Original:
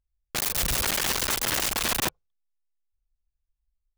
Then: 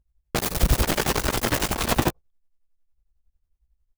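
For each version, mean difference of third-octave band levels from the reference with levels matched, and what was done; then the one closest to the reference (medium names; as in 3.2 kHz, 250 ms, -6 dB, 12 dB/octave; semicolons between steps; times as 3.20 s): 5.0 dB: tilt shelf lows +6.5 dB, about 1.1 kHz; doubling 17 ms -8.5 dB; tremolo of two beating tones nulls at 11 Hz; trim +6.5 dB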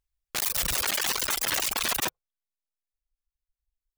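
3.0 dB: reverb removal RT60 1.6 s; bass shelf 390 Hz -8.5 dB; peak limiter -23 dBFS, peak gain reduction 6.5 dB; trim +4.5 dB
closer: second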